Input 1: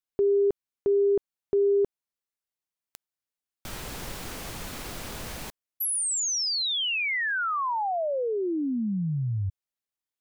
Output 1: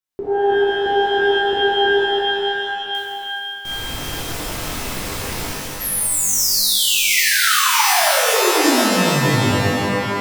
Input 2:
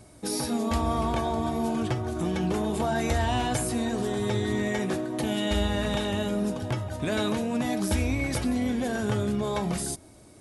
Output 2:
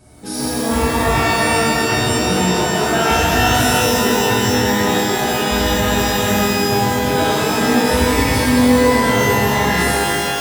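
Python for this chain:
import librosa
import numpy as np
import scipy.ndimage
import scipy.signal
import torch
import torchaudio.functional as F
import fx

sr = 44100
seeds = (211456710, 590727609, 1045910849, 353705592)

y = fx.rev_shimmer(x, sr, seeds[0], rt60_s=2.7, semitones=12, shimmer_db=-2, drr_db=-9.5)
y = F.gain(torch.from_numpy(y), -1.0).numpy()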